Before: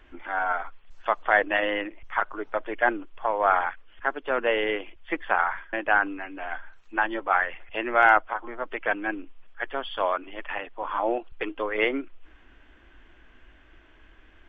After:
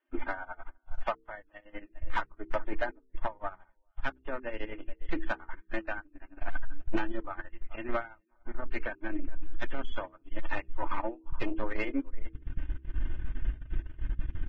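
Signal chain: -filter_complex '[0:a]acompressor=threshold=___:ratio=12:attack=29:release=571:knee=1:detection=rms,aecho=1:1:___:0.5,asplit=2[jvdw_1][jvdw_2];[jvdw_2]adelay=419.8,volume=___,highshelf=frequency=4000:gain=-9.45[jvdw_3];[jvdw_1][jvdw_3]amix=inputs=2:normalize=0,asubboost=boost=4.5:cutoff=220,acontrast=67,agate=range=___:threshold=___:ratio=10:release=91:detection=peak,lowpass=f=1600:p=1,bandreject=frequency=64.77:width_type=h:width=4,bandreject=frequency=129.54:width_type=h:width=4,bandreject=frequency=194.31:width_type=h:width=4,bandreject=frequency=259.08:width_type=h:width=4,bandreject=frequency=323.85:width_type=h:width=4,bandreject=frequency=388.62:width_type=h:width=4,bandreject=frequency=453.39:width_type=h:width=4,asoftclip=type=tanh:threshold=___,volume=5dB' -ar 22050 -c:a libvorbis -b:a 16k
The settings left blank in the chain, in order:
-36dB, 3.3, -16dB, -35dB, -29dB, -25dB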